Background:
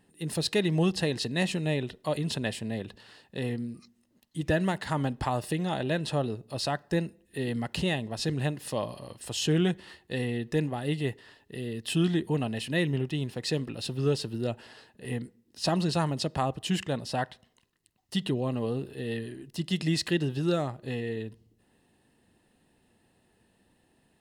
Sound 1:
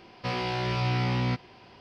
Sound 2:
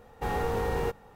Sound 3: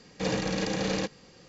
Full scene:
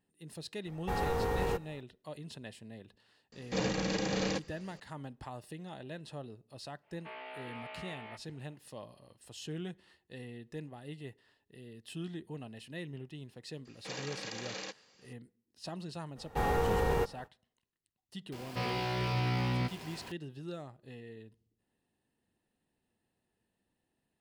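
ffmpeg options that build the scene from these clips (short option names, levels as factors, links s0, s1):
-filter_complex "[2:a]asplit=2[s0][s1];[3:a]asplit=2[s2][s3];[1:a]asplit=2[s4][s5];[0:a]volume=0.168[s6];[s4]highpass=f=590:t=q:w=0.5412,highpass=f=590:t=q:w=1.307,lowpass=f=3200:t=q:w=0.5176,lowpass=f=3200:t=q:w=0.7071,lowpass=f=3200:t=q:w=1.932,afreqshift=-110[s7];[s3]highpass=f=1100:p=1[s8];[s5]aeval=exprs='val(0)+0.5*0.01*sgn(val(0))':c=same[s9];[s0]atrim=end=1.15,asetpts=PTS-STARTPTS,volume=0.708,afade=t=in:d=0.004:c=hsin,afade=t=out:st=1.146:d=0.004:c=hsin,adelay=660[s10];[s2]atrim=end=1.48,asetpts=PTS-STARTPTS,volume=0.668,afade=t=in:d=0.004:c=hsin,afade=t=out:st=1.476:d=0.004:c=hsin,adelay=3320[s11];[s7]atrim=end=1.8,asetpts=PTS-STARTPTS,volume=0.237,afade=t=in:d=0.1,afade=t=out:st=1.7:d=0.1,adelay=6810[s12];[s8]atrim=end=1.48,asetpts=PTS-STARTPTS,volume=0.447,afade=t=in:d=0.004:c=hsin,afade=t=out:st=1.476:d=0.004:c=hsin,adelay=13650[s13];[s1]atrim=end=1.15,asetpts=PTS-STARTPTS,volume=0.944,afade=t=in:d=0.05,afade=t=out:st=1.1:d=0.05,adelay=16140[s14];[s9]atrim=end=1.8,asetpts=PTS-STARTPTS,volume=0.531,afade=t=in:d=0.004:c=hsin,afade=t=out:st=1.796:d=0.004:c=hsin,adelay=18320[s15];[s6][s10][s11][s12][s13][s14][s15]amix=inputs=7:normalize=0"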